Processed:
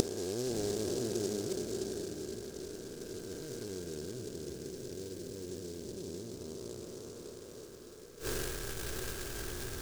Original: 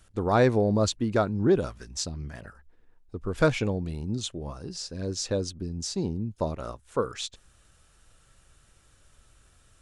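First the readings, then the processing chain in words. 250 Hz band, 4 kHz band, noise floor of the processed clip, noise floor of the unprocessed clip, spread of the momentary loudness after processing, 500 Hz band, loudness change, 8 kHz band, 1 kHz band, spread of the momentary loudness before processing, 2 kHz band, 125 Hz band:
-10.5 dB, -8.0 dB, -50 dBFS, -61 dBFS, 11 LU, -9.5 dB, -11.5 dB, -4.0 dB, -18.0 dB, 14 LU, -10.0 dB, -14.0 dB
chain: time blur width 1.28 s; gate -57 dBFS, range -18 dB; bell 510 Hz -5 dB 0.46 oct; upward compressor, threshold -38 dBFS; resonator 120 Hz, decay 0.18 s, harmonics all, mix 40%; small resonant body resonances 400/1600 Hz, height 17 dB, ringing for 25 ms; flipped gate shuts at -38 dBFS, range -28 dB; on a send: diffused feedback echo 0.641 s, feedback 47%, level -6.5 dB; on the sum: noise-modulated delay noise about 5700 Hz, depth 0.12 ms; gain +16.5 dB

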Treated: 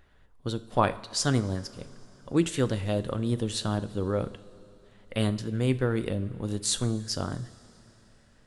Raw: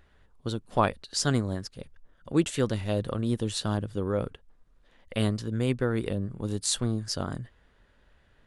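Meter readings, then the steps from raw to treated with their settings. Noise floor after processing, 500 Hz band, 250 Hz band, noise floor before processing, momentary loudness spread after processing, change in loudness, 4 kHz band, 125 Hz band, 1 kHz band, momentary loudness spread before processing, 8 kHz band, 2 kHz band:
-59 dBFS, +0.5 dB, 0.0 dB, -63 dBFS, 12 LU, +0.5 dB, +0.5 dB, +0.5 dB, +0.5 dB, 9 LU, +0.5 dB, 0.0 dB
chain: two-slope reverb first 0.46 s, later 3.6 s, from -15 dB, DRR 11.5 dB

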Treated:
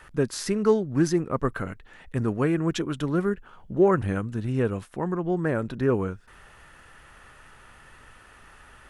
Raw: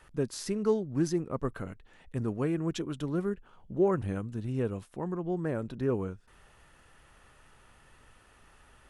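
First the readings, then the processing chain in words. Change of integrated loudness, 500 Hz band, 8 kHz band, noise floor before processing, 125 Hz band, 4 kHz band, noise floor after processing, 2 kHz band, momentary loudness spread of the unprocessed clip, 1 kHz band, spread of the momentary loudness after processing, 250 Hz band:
+6.5 dB, +6.5 dB, +6.0 dB, -60 dBFS, +6.0 dB, +7.0 dB, -52 dBFS, +11.0 dB, 11 LU, +8.5 dB, 11 LU, +6.0 dB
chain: bell 1600 Hz +5.5 dB 1.2 oct; gain +6 dB

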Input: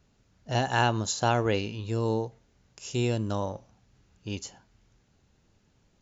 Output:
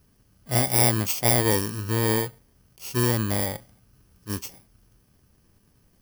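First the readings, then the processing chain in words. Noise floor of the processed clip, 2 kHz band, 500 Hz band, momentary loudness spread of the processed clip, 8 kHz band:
-63 dBFS, +2.0 dB, +2.0 dB, 15 LU, n/a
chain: FFT order left unsorted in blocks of 32 samples; attack slew limiter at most 420 dB/s; gain +4.5 dB

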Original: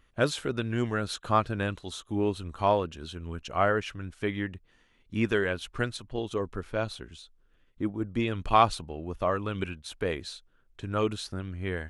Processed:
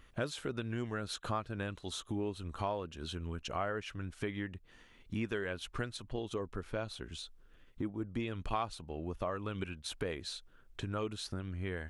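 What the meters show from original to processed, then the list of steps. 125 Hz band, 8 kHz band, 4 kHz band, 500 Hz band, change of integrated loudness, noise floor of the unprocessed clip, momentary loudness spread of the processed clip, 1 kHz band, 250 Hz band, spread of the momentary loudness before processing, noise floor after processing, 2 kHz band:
-7.0 dB, -4.5 dB, -5.5 dB, -10.0 dB, -9.5 dB, -65 dBFS, 6 LU, -12.0 dB, -8.0 dB, 13 LU, -61 dBFS, -9.0 dB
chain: compressor 3:1, threshold -43 dBFS, peak gain reduction 20.5 dB; gain +4.5 dB

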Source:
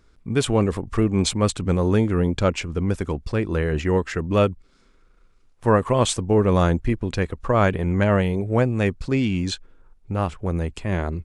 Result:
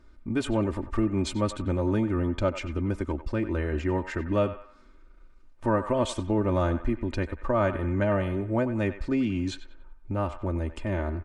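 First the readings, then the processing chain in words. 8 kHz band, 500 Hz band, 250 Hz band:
-12.5 dB, -6.0 dB, -4.5 dB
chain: high shelf 2900 Hz -10 dB; comb 3.3 ms, depth 72%; compressor 1.5:1, threshold -34 dBFS, peak gain reduction 8 dB; narrowing echo 94 ms, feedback 49%, band-pass 1400 Hz, level -10 dB

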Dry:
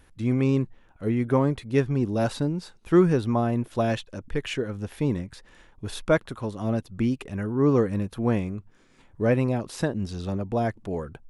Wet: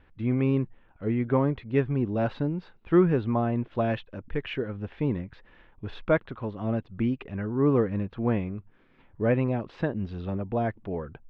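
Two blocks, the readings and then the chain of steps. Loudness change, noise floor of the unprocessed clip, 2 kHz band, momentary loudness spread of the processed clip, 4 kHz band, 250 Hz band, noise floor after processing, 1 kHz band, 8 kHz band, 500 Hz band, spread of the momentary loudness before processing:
-2.0 dB, -56 dBFS, -2.0 dB, 11 LU, -7.0 dB, -2.0 dB, -58 dBFS, -2.0 dB, under -25 dB, -2.0 dB, 11 LU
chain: LPF 3100 Hz 24 dB/oct; gain -2 dB

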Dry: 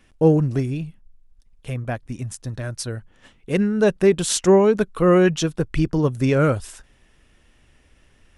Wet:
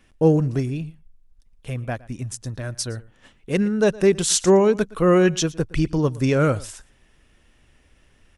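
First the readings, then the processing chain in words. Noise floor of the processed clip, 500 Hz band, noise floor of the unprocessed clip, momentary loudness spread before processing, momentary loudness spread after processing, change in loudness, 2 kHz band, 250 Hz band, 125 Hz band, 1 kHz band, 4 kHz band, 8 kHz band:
-59 dBFS, -1.0 dB, -57 dBFS, 15 LU, 15 LU, -1.0 dB, -0.5 dB, -1.0 dB, -1.0 dB, -1.0 dB, +2.0 dB, +3.0 dB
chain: echo 0.115 s -21.5 dB; dynamic EQ 6100 Hz, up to +5 dB, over -46 dBFS, Q 1; gain -1 dB

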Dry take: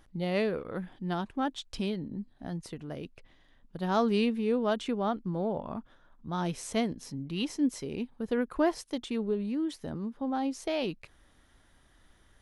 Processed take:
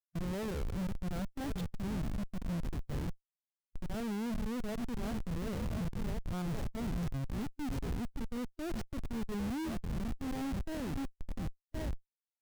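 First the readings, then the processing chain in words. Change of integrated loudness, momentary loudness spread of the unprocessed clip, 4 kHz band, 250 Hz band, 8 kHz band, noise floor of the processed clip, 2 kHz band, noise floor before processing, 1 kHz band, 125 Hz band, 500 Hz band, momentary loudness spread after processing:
-6.5 dB, 12 LU, -9.5 dB, -6.0 dB, -6.0 dB, under -85 dBFS, -7.0 dB, -63 dBFS, -10.5 dB, +1.0 dB, -12.0 dB, 5 LU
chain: delay with a stepping band-pass 0.533 s, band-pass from 210 Hz, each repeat 1.4 oct, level -9 dB; reverse; compressor 12:1, threshold -38 dBFS, peak gain reduction 17 dB; reverse; Schmitt trigger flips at -41 dBFS; harmonic-percussive split harmonic +4 dB; low shelf 190 Hz +10.5 dB; limiter -30.5 dBFS, peak gain reduction 4.5 dB

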